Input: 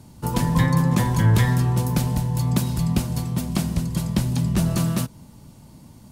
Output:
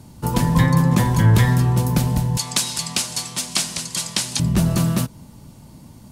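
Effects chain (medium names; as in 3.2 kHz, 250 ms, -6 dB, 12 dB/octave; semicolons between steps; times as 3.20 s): 2.37–4.40 s: frequency weighting ITU-R 468; trim +3 dB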